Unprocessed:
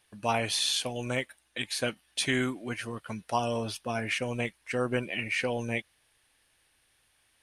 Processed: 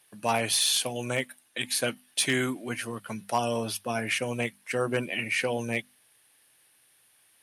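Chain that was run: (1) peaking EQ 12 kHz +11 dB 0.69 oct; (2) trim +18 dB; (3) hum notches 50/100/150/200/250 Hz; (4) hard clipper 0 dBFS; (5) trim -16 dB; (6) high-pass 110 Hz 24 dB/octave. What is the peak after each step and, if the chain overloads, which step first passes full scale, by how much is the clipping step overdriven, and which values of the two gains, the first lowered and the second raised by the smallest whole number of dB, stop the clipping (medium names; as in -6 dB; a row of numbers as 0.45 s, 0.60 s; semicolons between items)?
-13.0 dBFS, +5.0 dBFS, +4.5 dBFS, 0.0 dBFS, -16.0 dBFS, -12.5 dBFS; step 2, 4.5 dB; step 2 +13 dB, step 5 -11 dB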